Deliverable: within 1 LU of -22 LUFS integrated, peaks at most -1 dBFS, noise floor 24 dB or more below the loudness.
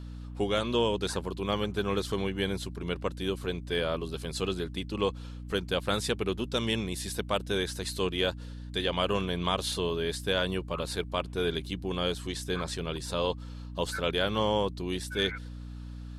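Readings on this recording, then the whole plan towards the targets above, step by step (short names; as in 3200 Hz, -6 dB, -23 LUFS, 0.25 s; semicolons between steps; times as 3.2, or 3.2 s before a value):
hum 60 Hz; harmonics up to 300 Hz; hum level -38 dBFS; loudness -31.0 LUFS; peak -14.5 dBFS; loudness target -22.0 LUFS
-> notches 60/120/180/240/300 Hz; gain +9 dB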